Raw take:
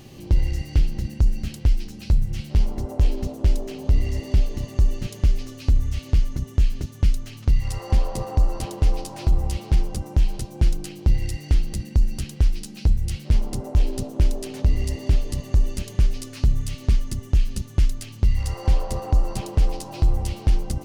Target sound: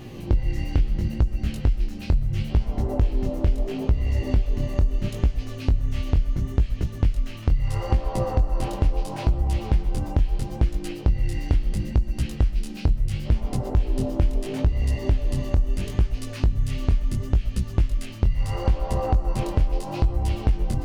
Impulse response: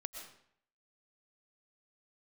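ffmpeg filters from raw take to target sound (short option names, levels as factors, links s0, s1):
-filter_complex "[0:a]asplit=2[s0][s1];[s1]lowpass=3600[s2];[1:a]atrim=start_sample=2205,afade=t=out:st=0.18:d=0.01,atrim=end_sample=8379,asetrate=42777,aresample=44100[s3];[s2][s3]afir=irnorm=-1:irlink=0,volume=1.78[s4];[s0][s4]amix=inputs=2:normalize=0,flanger=delay=16.5:depth=7.7:speed=0.74,acompressor=threshold=0.112:ratio=4,volume=1.19"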